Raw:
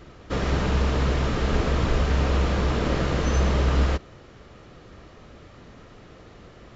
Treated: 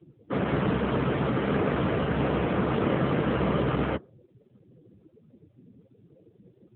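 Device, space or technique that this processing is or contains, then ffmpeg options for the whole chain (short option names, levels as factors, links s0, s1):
mobile call with aggressive noise cancelling: -af "highpass=110,afftdn=nr=30:nf=-37,volume=1.26" -ar 8000 -c:a libopencore_amrnb -b:a 7950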